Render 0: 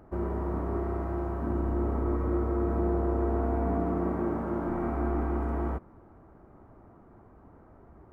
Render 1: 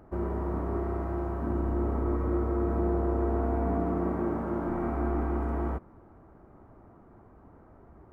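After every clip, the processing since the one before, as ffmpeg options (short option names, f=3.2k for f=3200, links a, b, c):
-af anull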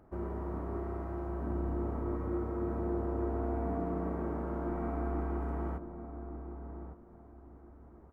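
-filter_complex "[0:a]asplit=2[a][b];[b]adelay=1157,lowpass=f=860:p=1,volume=-8dB,asplit=2[c][d];[d]adelay=1157,lowpass=f=860:p=1,volume=0.28,asplit=2[e][f];[f]adelay=1157,lowpass=f=860:p=1,volume=0.28[g];[a][c][e][g]amix=inputs=4:normalize=0,volume=-6.5dB"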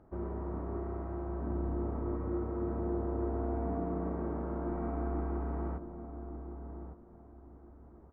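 -af "lowpass=f=1.5k:p=1"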